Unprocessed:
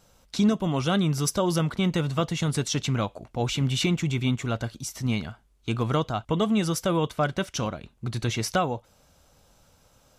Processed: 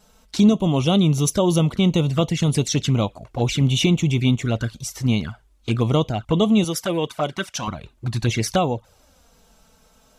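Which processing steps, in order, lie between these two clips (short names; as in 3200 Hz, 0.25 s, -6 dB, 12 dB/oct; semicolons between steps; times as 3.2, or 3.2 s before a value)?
6.64–7.68 HPF 390 Hz 6 dB/oct; envelope flanger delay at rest 4.8 ms, full sweep at -22 dBFS; gain +7 dB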